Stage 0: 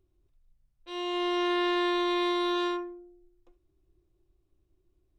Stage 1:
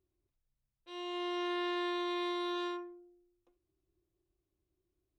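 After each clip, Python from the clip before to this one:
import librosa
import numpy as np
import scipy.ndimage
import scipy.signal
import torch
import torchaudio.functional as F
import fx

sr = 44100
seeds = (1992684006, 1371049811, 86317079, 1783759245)

y = fx.highpass(x, sr, hz=92.0, slope=6)
y = F.gain(torch.from_numpy(y), -8.0).numpy()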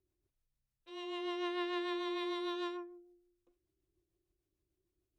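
y = fx.rotary(x, sr, hz=6.7)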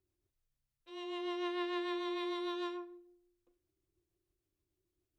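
y = fx.rev_plate(x, sr, seeds[0], rt60_s=0.53, hf_ratio=0.95, predelay_ms=0, drr_db=14.5)
y = F.gain(torch.from_numpy(y), -1.0).numpy()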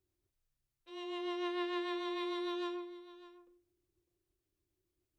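y = x + 10.0 ** (-17.0 / 20.0) * np.pad(x, (int(603 * sr / 1000.0), 0))[:len(x)]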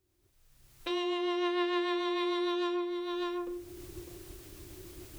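y = fx.recorder_agc(x, sr, target_db=-32.5, rise_db_per_s=29.0, max_gain_db=30)
y = F.gain(torch.from_numpy(y), 6.5).numpy()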